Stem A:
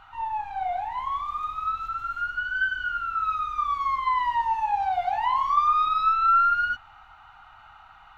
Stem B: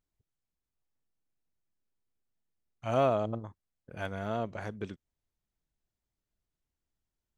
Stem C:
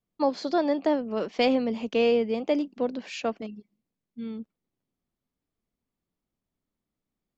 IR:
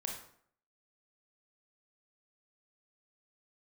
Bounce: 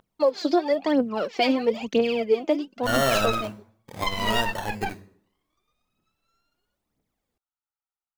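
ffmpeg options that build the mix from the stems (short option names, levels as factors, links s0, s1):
-filter_complex "[0:a]aeval=exprs='0.299*(cos(1*acos(clip(val(0)/0.299,-1,1)))-cos(1*PI/2))+0.0596*(cos(6*acos(clip(val(0)/0.299,-1,1)))-cos(6*PI/2))+0.119*(cos(7*acos(clip(val(0)/0.299,-1,1)))-cos(7*PI/2))':c=same,volume=0.944[s0];[1:a]acrusher=samples=25:mix=1:aa=0.000001:lfo=1:lforange=15:lforate=0.59,acontrast=70,volume=0.596,asplit=3[s1][s2][s3];[s2]volume=0.708[s4];[2:a]aphaser=in_gain=1:out_gain=1:delay=3.4:decay=0.76:speed=1:type=triangular,volume=1.33[s5];[s3]apad=whole_len=360569[s6];[s0][s6]sidechaingate=range=0.00126:threshold=0.02:ratio=16:detection=peak[s7];[s1][s5]amix=inputs=2:normalize=0,highpass=f=120:p=1,alimiter=limit=0.422:level=0:latency=1:release=209,volume=1[s8];[3:a]atrim=start_sample=2205[s9];[s4][s9]afir=irnorm=-1:irlink=0[s10];[s7][s8][s10]amix=inputs=3:normalize=0,alimiter=limit=0.266:level=0:latency=1:release=108"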